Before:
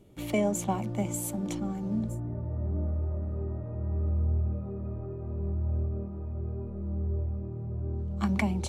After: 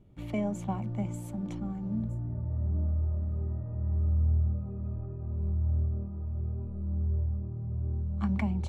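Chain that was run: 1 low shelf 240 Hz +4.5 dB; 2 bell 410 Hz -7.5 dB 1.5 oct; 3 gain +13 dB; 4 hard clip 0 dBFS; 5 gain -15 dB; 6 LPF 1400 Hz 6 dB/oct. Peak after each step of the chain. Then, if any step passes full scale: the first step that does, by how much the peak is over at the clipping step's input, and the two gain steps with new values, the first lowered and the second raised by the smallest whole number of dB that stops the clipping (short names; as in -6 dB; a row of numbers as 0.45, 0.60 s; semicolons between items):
-13.0, -15.5, -2.5, -2.5, -17.5, -19.0 dBFS; no overload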